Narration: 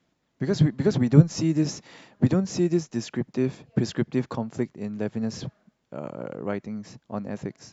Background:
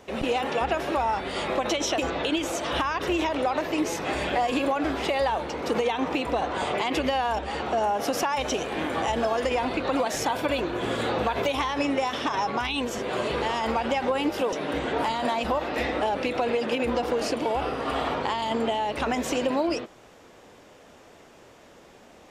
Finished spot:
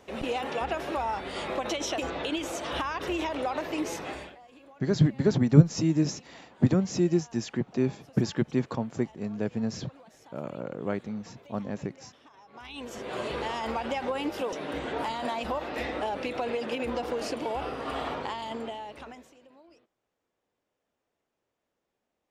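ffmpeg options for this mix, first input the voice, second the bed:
-filter_complex "[0:a]adelay=4400,volume=-1.5dB[a];[1:a]volume=18dB,afade=t=out:st=3.95:d=0.41:silence=0.0668344,afade=t=in:st=12.49:d=0.71:silence=0.0707946,afade=t=out:st=18.1:d=1.22:silence=0.0501187[b];[a][b]amix=inputs=2:normalize=0"

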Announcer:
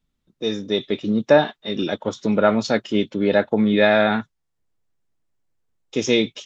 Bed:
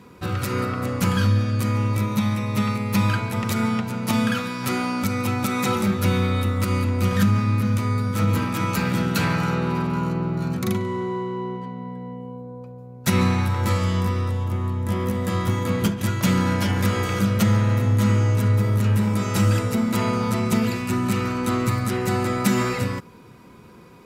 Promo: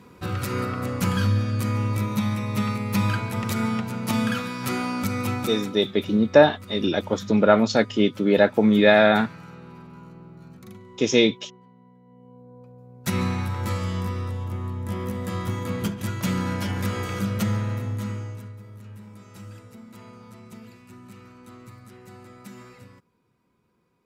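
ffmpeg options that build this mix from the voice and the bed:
-filter_complex "[0:a]adelay=5050,volume=0.5dB[a];[1:a]volume=12dB,afade=t=out:st=5.32:d=0.39:silence=0.133352,afade=t=in:st=12.05:d=0.94:silence=0.188365,afade=t=out:st=17.43:d=1.11:silence=0.133352[b];[a][b]amix=inputs=2:normalize=0"

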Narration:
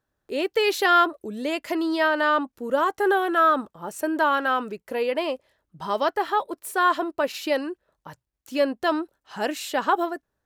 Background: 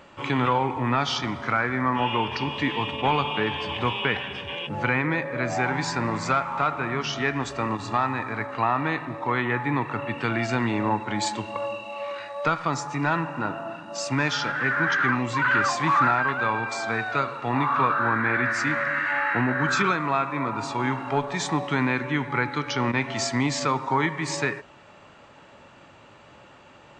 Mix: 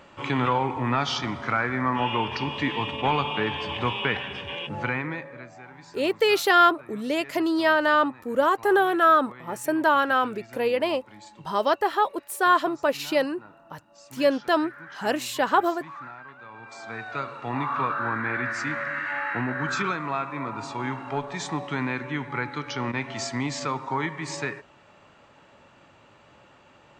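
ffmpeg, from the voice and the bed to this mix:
-filter_complex "[0:a]adelay=5650,volume=1dB[a];[1:a]volume=15dB,afade=t=out:st=4.61:d=0.9:silence=0.105925,afade=t=in:st=16.5:d=0.89:silence=0.158489[b];[a][b]amix=inputs=2:normalize=0"

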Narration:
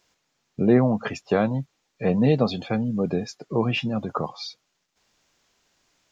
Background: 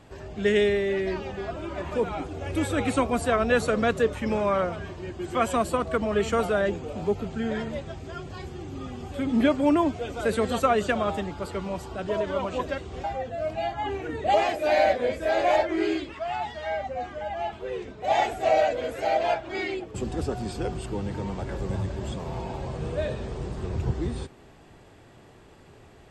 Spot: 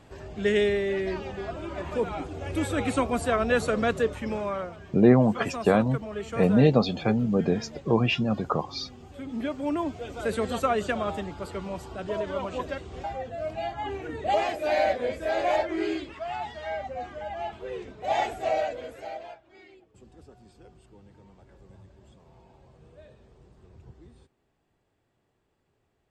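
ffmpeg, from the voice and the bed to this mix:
-filter_complex "[0:a]adelay=4350,volume=0.5dB[a];[1:a]volume=5.5dB,afade=t=out:st=3.95:d=0.79:silence=0.375837,afade=t=in:st=9.46:d=0.84:silence=0.446684,afade=t=out:st=18.27:d=1.1:silence=0.105925[b];[a][b]amix=inputs=2:normalize=0"

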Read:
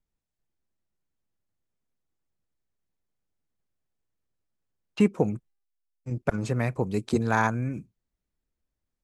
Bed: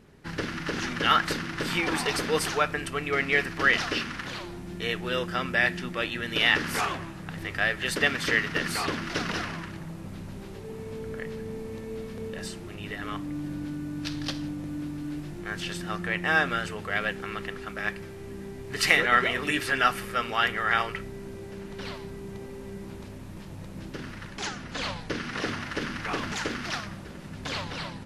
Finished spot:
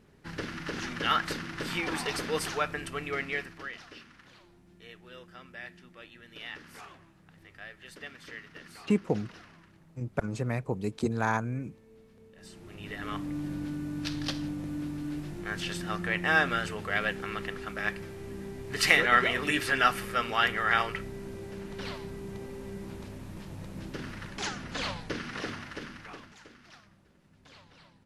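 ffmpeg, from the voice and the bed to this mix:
-filter_complex "[0:a]adelay=3900,volume=-4.5dB[a];[1:a]volume=14dB,afade=t=out:st=3.03:d=0.67:silence=0.177828,afade=t=in:st=12.35:d=0.83:silence=0.112202,afade=t=out:st=24.72:d=1.61:silence=0.0891251[b];[a][b]amix=inputs=2:normalize=0"

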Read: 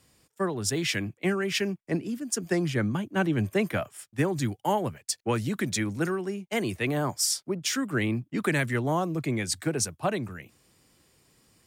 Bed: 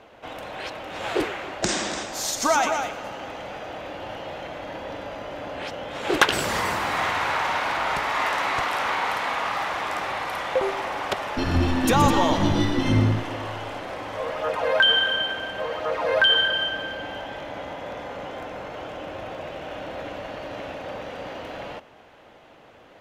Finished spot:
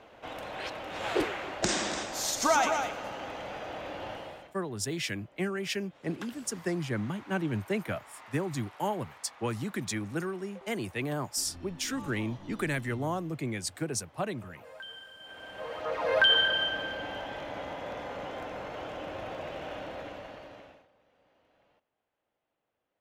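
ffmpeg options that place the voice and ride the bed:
-filter_complex "[0:a]adelay=4150,volume=-5.5dB[a];[1:a]volume=19dB,afade=t=out:st=4.07:d=0.47:silence=0.0707946,afade=t=in:st=15.19:d=1.02:silence=0.0707946,afade=t=out:st=19.65:d=1.23:silence=0.0334965[b];[a][b]amix=inputs=2:normalize=0"

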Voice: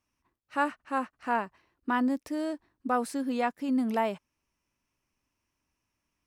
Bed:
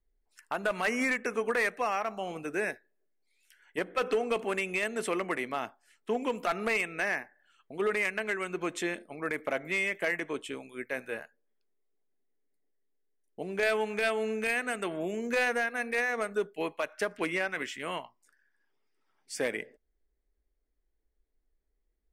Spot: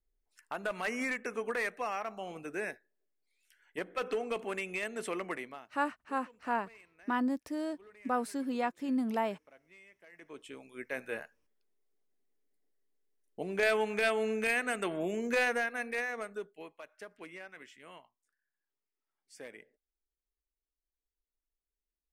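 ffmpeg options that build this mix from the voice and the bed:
-filter_complex "[0:a]adelay=5200,volume=-4dB[a];[1:a]volume=22dB,afade=t=out:st=5.32:d=0.37:silence=0.0749894,afade=t=in:st=10.11:d=1.14:silence=0.0421697,afade=t=out:st=15.27:d=1.43:silence=0.158489[b];[a][b]amix=inputs=2:normalize=0"

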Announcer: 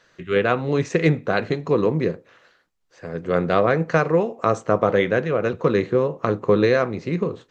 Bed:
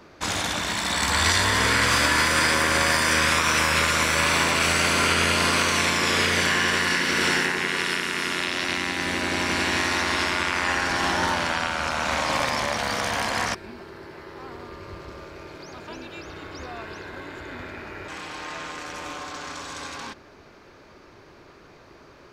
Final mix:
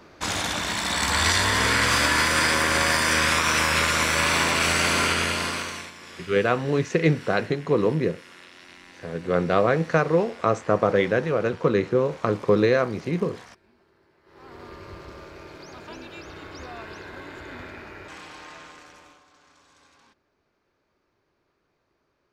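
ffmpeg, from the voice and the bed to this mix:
-filter_complex "[0:a]adelay=6000,volume=-2dB[a];[1:a]volume=19dB,afade=t=out:st=4.95:d=0.97:silence=0.0891251,afade=t=in:st=14.23:d=0.45:silence=0.105925,afade=t=out:st=17.58:d=1.65:silence=0.0891251[b];[a][b]amix=inputs=2:normalize=0"

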